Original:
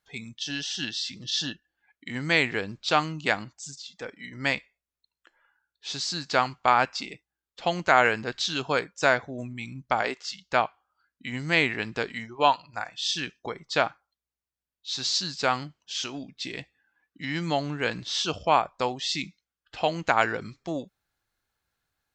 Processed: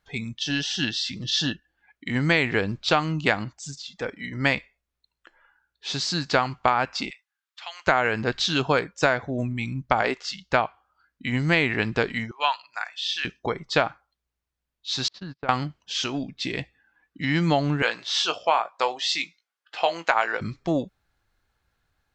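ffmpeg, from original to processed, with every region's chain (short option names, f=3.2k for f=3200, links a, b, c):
-filter_complex "[0:a]asettb=1/sr,asplit=3[a][b][c];[a]atrim=end=7.104[d];[b]atrim=start=7.1:end=7.87,asetpts=PTS-STARTPTS,afade=t=in:d=0.004:c=qsin,afade=t=out:st=0.766:d=0.004:c=qsin,highpass=f=1.1k:w=0.5412,highpass=f=1.1k:w=1.3066,acompressor=threshold=-44dB:ratio=2:attack=3.2:release=140:knee=1:detection=peak[e];[c]atrim=start=7.866[f];[d][e]acrossfade=d=0.004:c1=hsin:c2=qsin[g];[g][f]acrossfade=d=0.004:c1=qsin:c2=hsin,asettb=1/sr,asplit=3[h][i][j];[h]atrim=end=12.314[k];[i]atrim=start=12.31:end=13.25,asetpts=PTS-STARTPTS,afade=t=in:d=0.004:c=qsin,afade=t=out:st=0.936:d=0.004:c=qsin,highpass=1.4k,acrossover=split=4000[l][m];[m]acompressor=threshold=-42dB:ratio=4:attack=1:release=60[n];[l][n]amix=inputs=2:normalize=0[o];[j]atrim=start=13.246[p];[k][o]acrossfade=d=0.004:c1=hsin:c2=qsin[q];[q][p]acrossfade=d=0.004:c1=qsin:c2=hsin,asettb=1/sr,asplit=3[r][s][t];[r]atrim=end=15.084[u];[s]atrim=start=15.08:end=15.49,asetpts=PTS-STARTPTS,afade=t=in:d=0.004:c=qsin,afade=t=out:st=0.406:d=0.004:c=qsin,lowpass=1.8k,agate=range=-33dB:threshold=-41dB:ratio=16:release=100:detection=peak,acompressor=threshold=-42dB:ratio=3:attack=3.2:release=140:knee=1:detection=peak[v];[t]atrim=start=15.486[w];[u][v]acrossfade=d=0.004:c1=hsin:c2=qsin[x];[x][w]acrossfade=d=0.004:c1=qsin:c2=hsin,asettb=1/sr,asplit=3[y][z][aa];[y]atrim=end=17.824[ab];[z]atrim=start=17.82:end=20.41,asetpts=PTS-STARTPTS,afade=t=in:d=0.004:c=qsin,afade=t=out:st=2.586:d=0.004:c=qsin,highpass=640,asplit=2[ac][ad];[ad]adelay=18,volume=-9dB[ae];[ac][ae]amix=inputs=2:normalize=0,atrim=end_sample=114219[af];[aa]atrim=start=20.406[ag];[ab][af]acrossfade=d=0.004:c1=hsin:c2=qsin[ah];[ah][ag]acrossfade=d=0.004:c1=qsin:c2=hsin,highshelf=f=5.5k:g=-10,acompressor=threshold=-23dB:ratio=10,lowshelf=f=87:g=9,volume=7dB"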